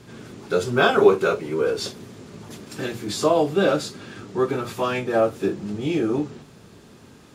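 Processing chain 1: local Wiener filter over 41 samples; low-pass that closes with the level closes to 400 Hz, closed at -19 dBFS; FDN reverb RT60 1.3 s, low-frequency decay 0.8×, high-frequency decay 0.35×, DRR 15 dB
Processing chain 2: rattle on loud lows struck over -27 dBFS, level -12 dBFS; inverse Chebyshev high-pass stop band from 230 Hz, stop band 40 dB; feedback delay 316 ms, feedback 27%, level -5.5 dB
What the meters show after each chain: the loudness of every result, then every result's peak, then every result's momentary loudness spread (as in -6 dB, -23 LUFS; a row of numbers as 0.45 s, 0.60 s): -26.5 LUFS, -23.5 LUFS; -6.5 dBFS, -5.0 dBFS; 20 LU, 16 LU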